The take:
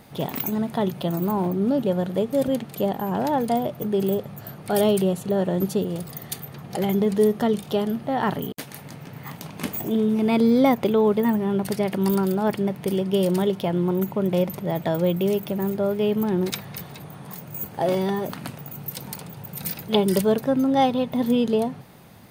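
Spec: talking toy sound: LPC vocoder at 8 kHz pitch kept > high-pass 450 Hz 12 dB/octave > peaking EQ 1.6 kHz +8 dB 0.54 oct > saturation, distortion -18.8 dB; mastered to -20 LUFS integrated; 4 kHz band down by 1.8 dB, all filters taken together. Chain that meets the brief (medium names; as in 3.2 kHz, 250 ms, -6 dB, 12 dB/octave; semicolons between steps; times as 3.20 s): peaking EQ 4 kHz -3 dB; LPC vocoder at 8 kHz pitch kept; high-pass 450 Hz 12 dB/octave; peaking EQ 1.6 kHz +8 dB 0.54 oct; saturation -16.5 dBFS; trim +10 dB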